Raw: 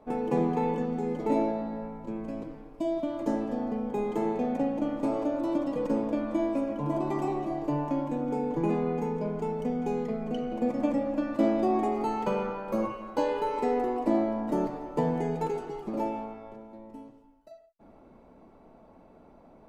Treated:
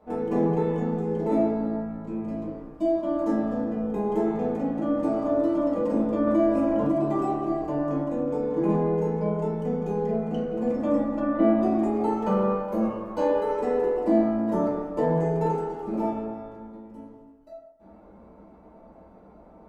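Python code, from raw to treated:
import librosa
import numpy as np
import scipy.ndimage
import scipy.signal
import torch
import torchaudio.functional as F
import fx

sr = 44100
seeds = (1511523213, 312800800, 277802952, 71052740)

y = fx.lowpass(x, sr, hz=3200.0, slope=24, at=(11.19, 11.6), fade=0.02)
y = y + 10.0 ** (-21.0 / 20.0) * np.pad(y, (int(329 * sr / 1000.0), 0))[:len(y)]
y = fx.rev_fdn(y, sr, rt60_s=0.92, lf_ratio=1.05, hf_ratio=0.35, size_ms=90.0, drr_db=-6.5)
y = fx.env_flatten(y, sr, amount_pct=50, at=(6.27, 6.92))
y = F.gain(torch.from_numpy(y), -4.5).numpy()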